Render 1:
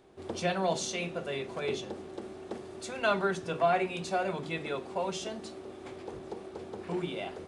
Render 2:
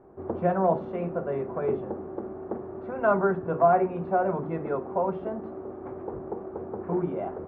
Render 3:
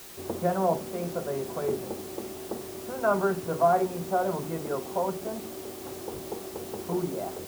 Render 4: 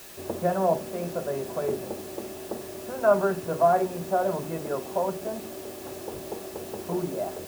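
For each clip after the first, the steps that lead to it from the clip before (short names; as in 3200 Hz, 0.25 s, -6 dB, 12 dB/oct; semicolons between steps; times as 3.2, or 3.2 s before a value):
LPF 1300 Hz 24 dB/oct; gain +6.5 dB
added noise white -44 dBFS; gain -2 dB
small resonant body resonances 610/1700/2600 Hz, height 8 dB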